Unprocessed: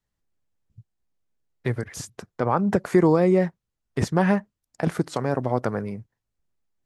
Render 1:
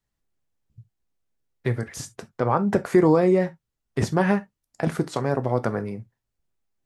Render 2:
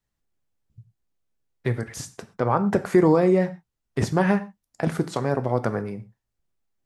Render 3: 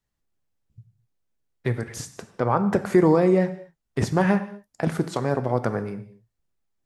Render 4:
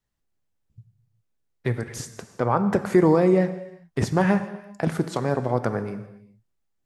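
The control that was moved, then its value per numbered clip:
gated-style reverb, gate: 90 ms, 150 ms, 270 ms, 430 ms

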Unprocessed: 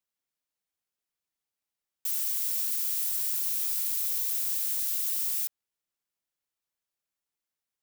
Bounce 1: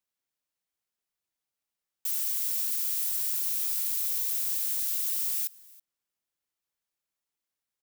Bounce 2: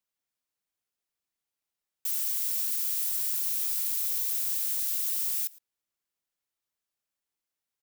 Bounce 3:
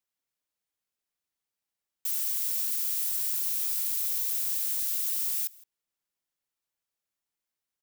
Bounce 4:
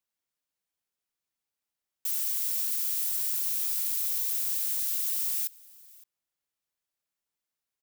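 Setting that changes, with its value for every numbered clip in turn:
delay, time: 326 ms, 112 ms, 165 ms, 565 ms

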